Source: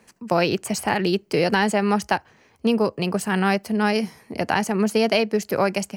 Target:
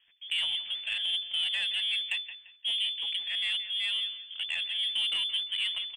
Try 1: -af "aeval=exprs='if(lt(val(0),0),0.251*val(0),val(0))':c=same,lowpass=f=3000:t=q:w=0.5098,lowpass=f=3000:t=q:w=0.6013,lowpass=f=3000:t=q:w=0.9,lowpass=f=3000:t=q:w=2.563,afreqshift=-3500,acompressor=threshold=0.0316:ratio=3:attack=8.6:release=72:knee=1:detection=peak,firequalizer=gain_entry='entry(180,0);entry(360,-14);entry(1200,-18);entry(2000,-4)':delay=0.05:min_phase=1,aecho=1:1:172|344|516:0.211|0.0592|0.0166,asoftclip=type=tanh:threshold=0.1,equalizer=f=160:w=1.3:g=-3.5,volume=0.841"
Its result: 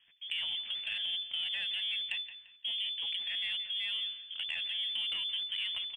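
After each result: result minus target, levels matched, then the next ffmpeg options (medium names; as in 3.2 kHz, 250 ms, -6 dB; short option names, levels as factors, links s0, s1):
compression: peak gain reduction +8 dB; 125 Hz band +4.0 dB
-af "aeval=exprs='if(lt(val(0),0),0.251*val(0),val(0))':c=same,lowpass=f=3000:t=q:w=0.5098,lowpass=f=3000:t=q:w=0.6013,lowpass=f=3000:t=q:w=0.9,lowpass=f=3000:t=q:w=2.563,afreqshift=-3500,firequalizer=gain_entry='entry(180,0);entry(360,-14);entry(1200,-18);entry(2000,-4)':delay=0.05:min_phase=1,aecho=1:1:172|344|516:0.211|0.0592|0.0166,asoftclip=type=tanh:threshold=0.1,equalizer=f=160:w=1.3:g=-3.5,volume=0.841"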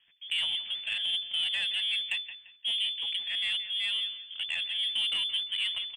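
125 Hz band +3.5 dB
-af "aeval=exprs='if(lt(val(0),0),0.251*val(0),val(0))':c=same,lowpass=f=3000:t=q:w=0.5098,lowpass=f=3000:t=q:w=0.6013,lowpass=f=3000:t=q:w=0.9,lowpass=f=3000:t=q:w=2.563,afreqshift=-3500,firequalizer=gain_entry='entry(180,0);entry(360,-14);entry(1200,-18);entry(2000,-4)':delay=0.05:min_phase=1,aecho=1:1:172|344|516:0.211|0.0592|0.0166,asoftclip=type=tanh:threshold=0.1,equalizer=f=160:w=1.3:g=-10.5,volume=0.841"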